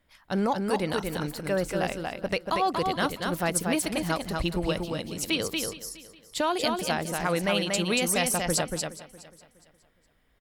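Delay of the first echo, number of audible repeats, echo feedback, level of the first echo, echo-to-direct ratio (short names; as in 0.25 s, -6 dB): 0.235 s, 5, no steady repeat, -4.0 dB, -3.5 dB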